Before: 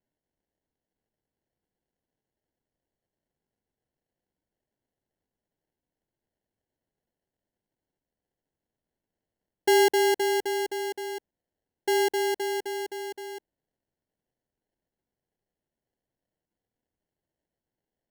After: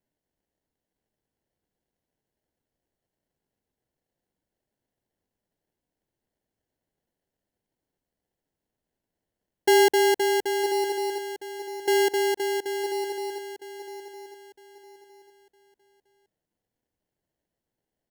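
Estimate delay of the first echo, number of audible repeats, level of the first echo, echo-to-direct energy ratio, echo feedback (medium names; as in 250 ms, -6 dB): 959 ms, 3, -11.0 dB, -10.5 dB, 30%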